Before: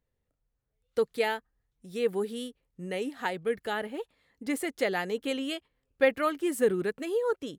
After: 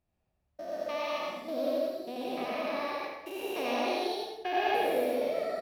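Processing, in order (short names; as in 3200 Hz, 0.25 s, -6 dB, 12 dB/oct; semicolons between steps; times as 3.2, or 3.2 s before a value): stepped spectrum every 0.4 s; high shelf 4500 Hz -6 dB; echo 0.112 s -7 dB; plate-style reverb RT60 1.1 s, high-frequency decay 0.75×, pre-delay 0.1 s, DRR -2.5 dB; speed mistake 33 rpm record played at 45 rpm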